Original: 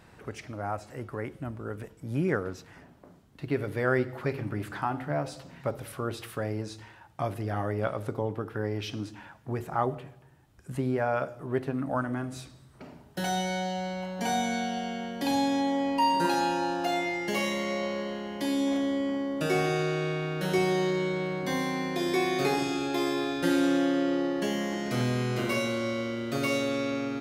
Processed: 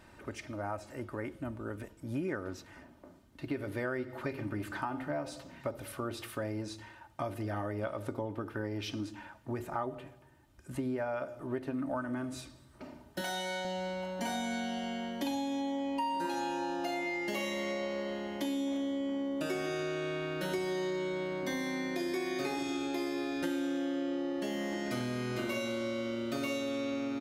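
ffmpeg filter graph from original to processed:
ffmpeg -i in.wav -filter_complex "[0:a]asettb=1/sr,asplit=3[link_01][link_02][link_03];[link_01]atrim=end=13.214[link_04];[link_02]atrim=start=13.21:end=13.65,asetpts=PTS-STARTPTS,afade=type=in:duration=0.004:curve=qsin,afade=type=out:start_time=0.436:duration=0.004:curve=qsin,highpass=59,lowshelf=frequency=360:gain=-9.5[link_05];[link_03]atrim=start=13.646[link_06];[link_04][link_05]acrossfade=duration=0.004:curve1=hsin:curve2=qsin[link_07];[link_07][link_06]acrossfade=duration=0.004:curve1=qsin:curve2=hsin,aecho=1:1:3.3:0.5,acompressor=threshold=-29dB:ratio=6,volume=-2.5dB" out.wav

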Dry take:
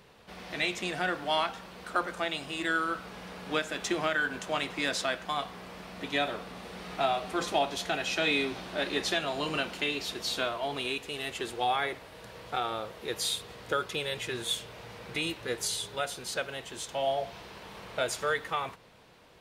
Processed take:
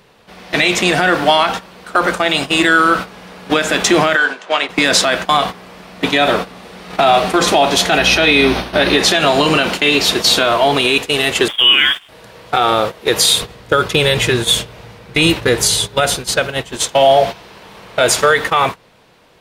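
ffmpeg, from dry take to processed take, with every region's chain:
ffmpeg -i in.wav -filter_complex "[0:a]asettb=1/sr,asplit=3[link_01][link_02][link_03];[link_01]atrim=end=4.164[link_04];[link_02]atrim=start=4.16:end=4.69,asetpts=PTS-STARTPTS,afade=type=in:duration=0.004:curve=qsin,afade=type=out:start_time=0.526:duration=0.004:curve=qsin,acrossover=split=1500|3800[link_05][link_06][link_07];[link_05]acompressor=threshold=-36dB:ratio=4[link_08];[link_06]acompressor=threshold=-40dB:ratio=4[link_09];[link_07]acompressor=threshold=-54dB:ratio=4[link_10];[link_08][link_09][link_10]amix=inputs=3:normalize=0,highpass=410,lowpass=7000[link_11];[link_03]atrim=start=4.686[link_12];[link_04][link_11]acrossfade=duration=0.004:curve1=hsin:curve2=qsin[link_13];[link_13][link_12]acrossfade=duration=0.004:curve1=qsin:curve2=hsin,asettb=1/sr,asplit=3[link_14][link_15][link_16];[link_14]atrim=end=7.984[link_17];[link_15]atrim=start=7.98:end=8.99,asetpts=PTS-STARTPTS,afade=type=in:duration=0.004:curve=qsin,afade=type=out:start_time=1.006:duration=0.004:curve=qsin,equalizer=frequency=7400:width=6.3:gain=-15,aeval=exprs='val(0)+0.00562*(sin(2*PI*60*n/s)+sin(2*PI*2*60*n/s)/2+sin(2*PI*3*60*n/s)/3+sin(2*PI*4*60*n/s)/4+sin(2*PI*5*60*n/s)/5)':channel_layout=same[link_18];[link_16]atrim=start=8.986[link_19];[link_17][link_18]acrossfade=duration=0.004:curve1=hsin:curve2=qsin[link_20];[link_20][link_19]acrossfade=duration=0.004:curve1=qsin:curve2=hsin,asettb=1/sr,asplit=3[link_21][link_22][link_23];[link_21]atrim=end=11.484[link_24];[link_22]atrim=start=11.48:end=12.09,asetpts=PTS-STARTPTS,afade=type=in:duration=0.004:curve=qsin,afade=type=out:start_time=0.606:duration=0.004:curve=qsin,lowpass=frequency=3100:width_type=q:width=0.5098,lowpass=frequency=3100:width_type=q:width=0.6013,lowpass=frequency=3100:width_type=q:width=0.9,lowpass=frequency=3100:width_type=q:width=2.563,afreqshift=-3700,aeval=exprs='sgn(val(0))*max(abs(val(0))-0.0015,0)':channel_layout=same[link_25];[link_23]atrim=start=12.086[link_26];[link_24][link_25]acrossfade=duration=0.004:curve1=hsin:curve2=qsin[link_27];[link_27][link_26]acrossfade=duration=0.004:curve1=qsin:curve2=hsin,asettb=1/sr,asplit=3[link_28][link_29][link_30];[link_28]atrim=end=13.424[link_31];[link_29]atrim=start=13.42:end=16.76,asetpts=PTS-STARTPTS,afade=type=in:duration=0.004:curve=qsin,afade=type=out:start_time=3.336:duration=0.004:curve=qsin,lowshelf=frequency=150:gain=11,tremolo=f=1.5:d=0.36[link_32];[link_30]atrim=start=16.756[link_33];[link_31][link_32]acrossfade=duration=0.004:curve1=hsin:curve2=qsin[link_34];[link_34][link_33]acrossfade=duration=0.004:curve1=qsin:curve2=hsin,agate=range=-14dB:threshold=-39dB:ratio=16:detection=peak,equalizer=frequency=71:width=1.9:gain=-4.5,alimiter=level_in=23dB:limit=-1dB:release=50:level=0:latency=1,volume=-1dB" out.wav

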